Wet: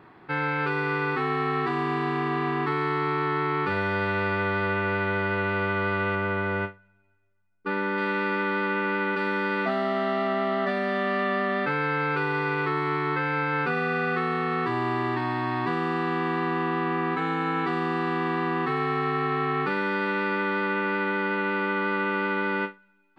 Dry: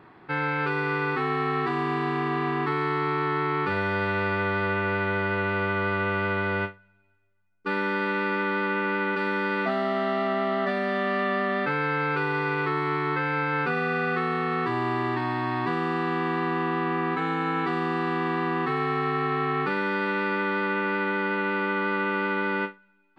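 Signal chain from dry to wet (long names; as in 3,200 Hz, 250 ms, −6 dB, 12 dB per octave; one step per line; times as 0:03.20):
0:06.15–0:07.98: high-shelf EQ 4,300 Hz −12 dB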